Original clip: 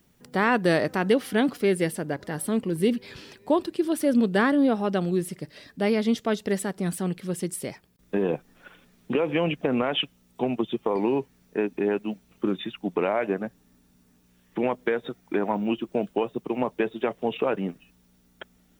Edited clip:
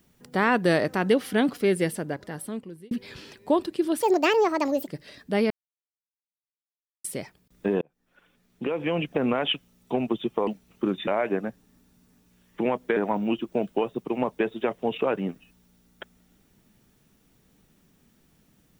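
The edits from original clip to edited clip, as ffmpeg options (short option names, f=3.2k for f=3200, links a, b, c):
-filter_complex "[0:a]asplit=10[a][b][c][d][e][f][g][h][i][j];[a]atrim=end=2.91,asetpts=PTS-STARTPTS,afade=t=out:st=1.94:d=0.97[k];[b]atrim=start=2.91:end=4.024,asetpts=PTS-STARTPTS,afade=t=in:d=0.004:c=hsin[l];[c]atrim=start=4.02:end=5.36,asetpts=PTS-STARTPTS,asetrate=69237,aresample=44100,atrim=end_sample=37639,asetpts=PTS-STARTPTS[m];[d]atrim=start=5.356:end=5.99,asetpts=PTS-STARTPTS,afade=t=out:st=0.63:d=0.004:c=hsin[n];[e]atrim=start=5.99:end=7.53,asetpts=PTS-STARTPTS,volume=0[o];[f]atrim=start=7.53:end=8.3,asetpts=PTS-STARTPTS,afade=t=in:d=0.004:c=hsin,afade=t=out:st=0.766:d=0.004:c=hsin[p];[g]atrim=start=8.3:end=10.962,asetpts=PTS-STARTPTS,afade=t=in:d=1.43[q];[h]atrim=start=12.078:end=12.682[r];[i]atrim=start=13.048:end=14.942[s];[j]atrim=start=15.358[t];[k][l]concat=n=2:v=0:a=1[u];[u][m]acrossfade=d=0.004:c1=hsin:c2=hsin[v];[n][o][p][q]concat=n=4:v=0:a=1[w];[v][w]acrossfade=d=0.004:c1=hsin:c2=hsin[x];[x][r]acrossfade=d=0.004:c1=hsin:c2=hsin[y];[y][s]acrossfade=d=0.004:c1=hsin:c2=hsin[z];[z][t]acrossfade=d=0.004:c1=hsin:c2=hsin"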